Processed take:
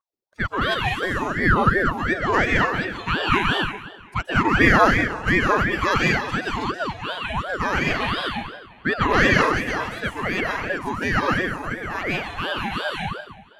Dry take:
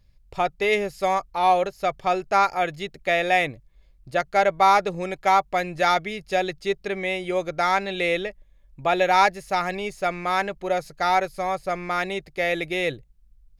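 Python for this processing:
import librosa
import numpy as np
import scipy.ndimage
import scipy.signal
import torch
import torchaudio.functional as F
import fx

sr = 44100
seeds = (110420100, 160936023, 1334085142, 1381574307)

y = fx.bin_expand(x, sr, power=1.5)
y = scipy.signal.sosfilt(scipy.signal.butter(2, 580.0, 'highpass', fs=sr, output='sos'), y)
y = fx.tilt_shelf(y, sr, db=9.0, hz=1300.0)
y = fx.vibrato(y, sr, rate_hz=0.53, depth_cents=54.0)
y = fx.high_shelf(y, sr, hz=2000.0, db=10.5)
y = fx.echo_filtered(y, sr, ms=538, feedback_pct=40, hz=2300.0, wet_db=-23.5)
y = fx.rev_plate(y, sr, seeds[0], rt60_s=1.0, hf_ratio=0.85, predelay_ms=115, drr_db=-2.5)
y = fx.ring_lfo(y, sr, carrier_hz=700.0, swing_pct=60, hz=2.8)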